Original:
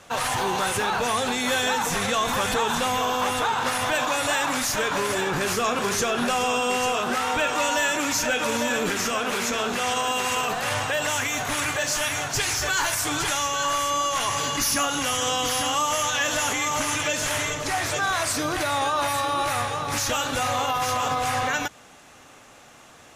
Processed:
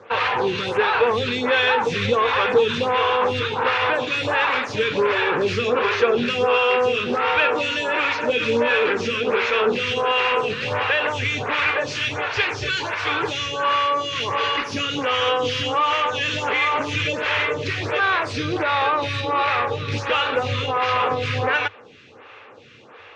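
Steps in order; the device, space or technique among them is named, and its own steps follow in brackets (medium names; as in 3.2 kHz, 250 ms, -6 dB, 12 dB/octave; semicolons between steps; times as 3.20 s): vibe pedal into a guitar amplifier (lamp-driven phase shifter 1.4 Hz; valve stage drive 19 dB, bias 0.3; cabinet simulation 97–4000 Hz, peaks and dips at 100 Hz +9 dB, 170 Hz -6 dB, 270 Hz -4 dB, 460 Hz +9 dB, 680 Hz -8 dB, 2.5 kHz +5 dB); trim +8 dB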